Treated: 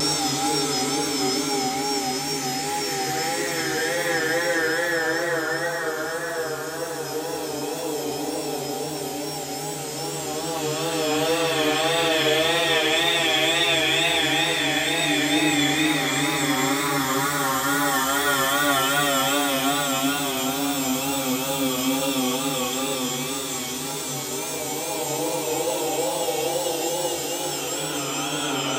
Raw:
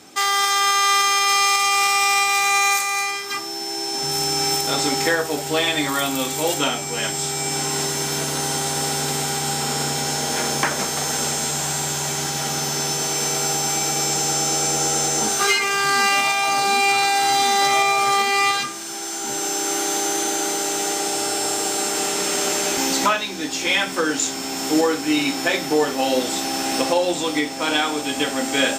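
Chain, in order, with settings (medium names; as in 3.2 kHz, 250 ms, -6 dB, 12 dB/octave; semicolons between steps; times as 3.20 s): tremolo 0.68 Hz, depth 45%; Paulstretch 16×, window 0.25 s, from 4.83 s; wow and flutter 70 cents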